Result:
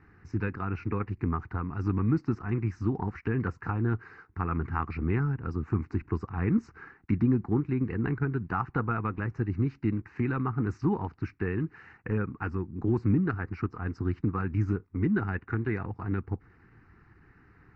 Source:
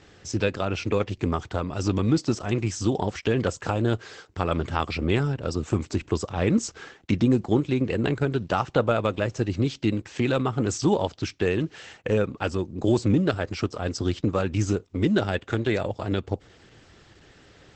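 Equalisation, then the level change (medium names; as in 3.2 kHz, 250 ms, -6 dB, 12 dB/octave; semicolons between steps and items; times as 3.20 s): low-pass 2.5 kHz 12 dB/octave; distance through air 130 m; static phaser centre 1.4 kHz, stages 4; -1.5 dB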